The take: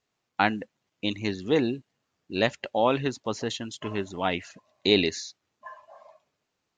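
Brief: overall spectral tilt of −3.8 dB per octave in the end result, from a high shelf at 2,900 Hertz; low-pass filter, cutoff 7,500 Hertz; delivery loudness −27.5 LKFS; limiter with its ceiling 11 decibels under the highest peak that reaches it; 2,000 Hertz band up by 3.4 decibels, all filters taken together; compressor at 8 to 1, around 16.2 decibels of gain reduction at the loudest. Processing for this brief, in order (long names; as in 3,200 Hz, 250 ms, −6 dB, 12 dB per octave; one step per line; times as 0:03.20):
low-pass filter 7,500 Hz
parametric band 2,000 Hz +7 dB
high-shelf EQ 2,900 Hz −6.5 dB
downward compressor 8 to 1, threshold −33 dBFS
level +14 dB
brickwall limiter −12 dBFS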